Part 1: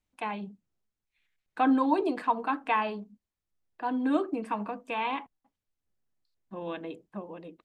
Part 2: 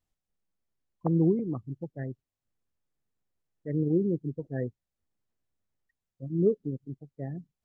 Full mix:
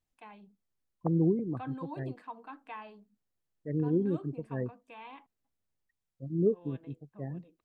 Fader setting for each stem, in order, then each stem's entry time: -17.0 dB, -2.5 dB; 0.00 s, 0.00 s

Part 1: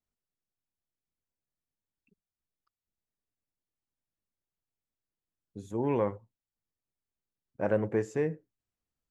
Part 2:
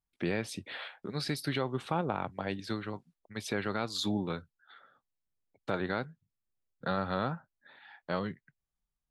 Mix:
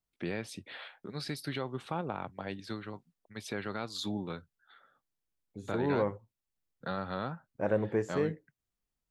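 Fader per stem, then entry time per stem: -1.5 dB, -4.0 dB; 0.00 s, 0.00 s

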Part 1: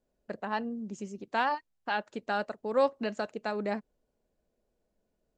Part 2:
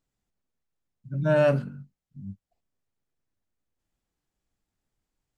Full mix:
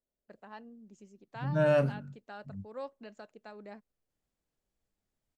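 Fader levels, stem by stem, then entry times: -15.5 dB, -4.5 dB; 0.00 s, 0.30 s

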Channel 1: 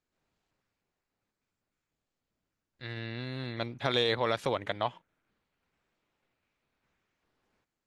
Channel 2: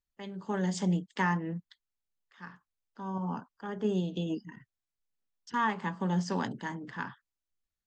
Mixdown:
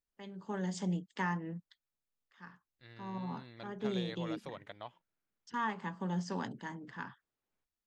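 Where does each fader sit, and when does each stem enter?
-15.5 dB, -6.0 dB; 0.00 s, 0.00 s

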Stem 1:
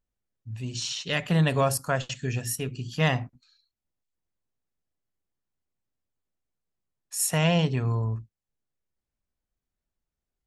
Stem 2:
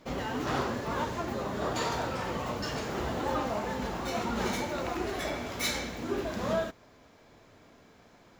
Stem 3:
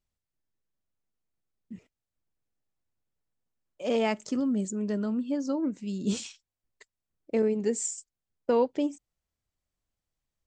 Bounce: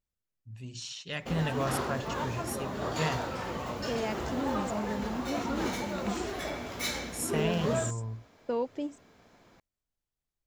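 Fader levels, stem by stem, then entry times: -9.0 dB, -2.0 dB, -7.0 dB; 0.00 s, 1.20 s, 0.00 s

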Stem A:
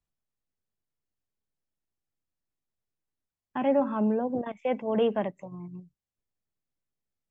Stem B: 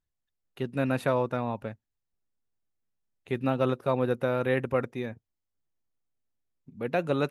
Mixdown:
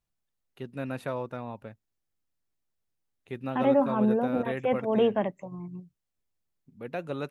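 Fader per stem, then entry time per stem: +1.5 dB, -7.0 dB; 0.00 s, 0.00 s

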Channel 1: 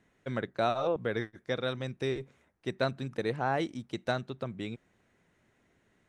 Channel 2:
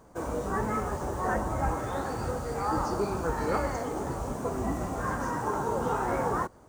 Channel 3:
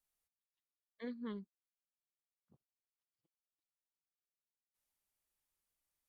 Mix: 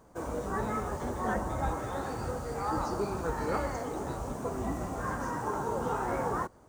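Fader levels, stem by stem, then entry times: -18.5 dB, -3.0 dB, +1.5 dB; 0.00 s, 0.00 s, 0.00 s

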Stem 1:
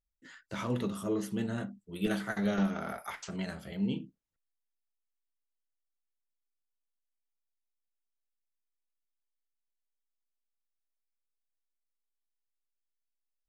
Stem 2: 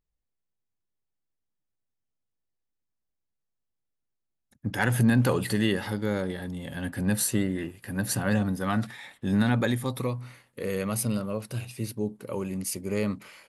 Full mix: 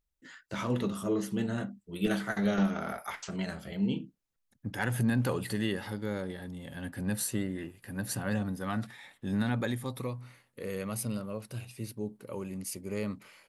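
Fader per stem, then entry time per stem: +2.0 dB, -6.5 dB; 0.00 s, 0.00 s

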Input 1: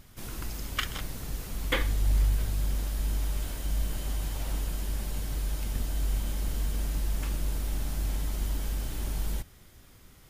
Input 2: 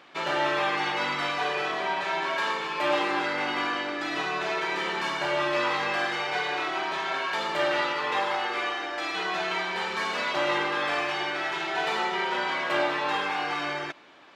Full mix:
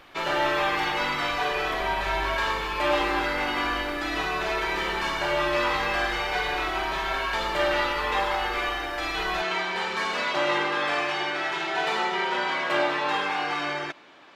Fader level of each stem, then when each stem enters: -12.0 dB, +1.5 dB; 0.00 s, 0.00 s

